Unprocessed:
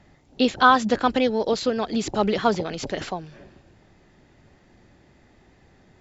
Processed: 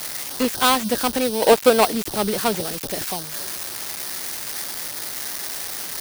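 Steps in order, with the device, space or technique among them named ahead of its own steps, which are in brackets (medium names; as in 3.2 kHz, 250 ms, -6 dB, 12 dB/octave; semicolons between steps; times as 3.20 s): 1.42–1.92 s: peaking EQ 820 Hz +14.5 dB 2.6 oct; budget class-D amplifier (dead-time distortion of 0.21 ms; zero-crossing glitches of -9.5 dBFS); trim -1 dB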